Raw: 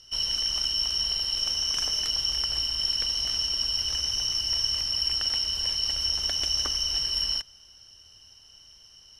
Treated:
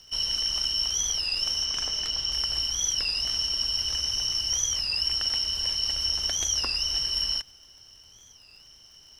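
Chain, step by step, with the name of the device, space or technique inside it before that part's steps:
0:01.65–0:02.32: parametric band 12,000 Hz −8 dB 1.1 octaves
warped LP (wow of a warped record 33 1/3 rpm, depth 160 cents; surface crackle 62 per second −47 dBFS; pink noise bed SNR 40 dB)

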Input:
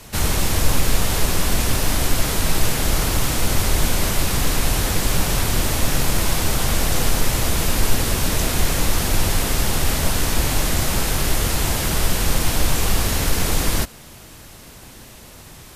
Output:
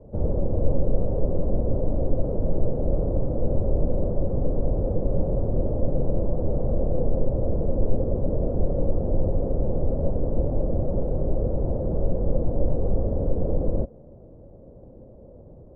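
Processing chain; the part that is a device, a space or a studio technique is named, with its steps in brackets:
under water (low-pass filter 580 Hz 24 dB per octave; parametric band 540 Hz +11 dB 0.43 octaves)
level −3 dB

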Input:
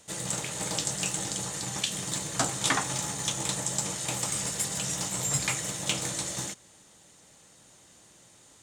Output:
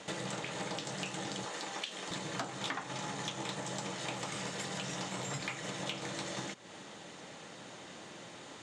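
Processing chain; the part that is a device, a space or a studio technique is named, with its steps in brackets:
AM radio (band-pass filter 170–3,500 Hz; downward compressor 5 to 1, threshold −50 dBFS, peak gain reduction 24 dB; soft clipping −34.5 dBFS, distortion −28 dB)
0:01.45–0:02.11: high-pass filter 330 Hz 12 dB per octave
level +12 dB

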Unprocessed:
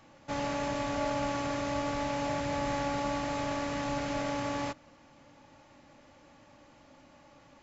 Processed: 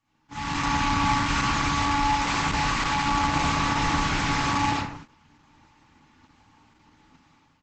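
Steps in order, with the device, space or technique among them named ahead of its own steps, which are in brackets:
Chebyshev band-stop filter 310–850 Hz, order 3
0:01.65–0:03.02: dynamic equaliser 130 Hz, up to −6 dB, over −52 dBFS, Q 0.77
double-tracking delay 31 ms −13 dB
speakerphone in a meeting room (convolution reverb RT60 0.70 s, pre-delay 49 ms, DRR −8 dB; automatic gain control gain up to 13 dB; noise gate −34 dBFS, range −12 dB; level −6.5 dB; Opus 12 kbit/s 48,000 Hz)

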